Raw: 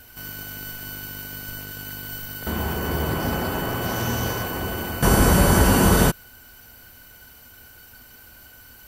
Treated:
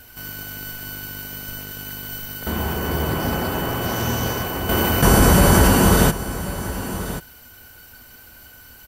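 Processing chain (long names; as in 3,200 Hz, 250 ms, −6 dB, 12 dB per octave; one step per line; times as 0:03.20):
on a send: single-tap delay 1,085 ms −13 dB
0:04.69–0:05.68: on the sum: envelope flattener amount 50%
level +2 dB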